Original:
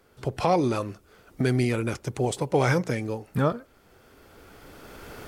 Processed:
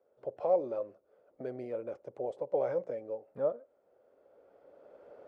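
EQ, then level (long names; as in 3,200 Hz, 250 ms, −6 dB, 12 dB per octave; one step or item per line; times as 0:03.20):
resonant band-pass 560 Hz, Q 6
0.0 dB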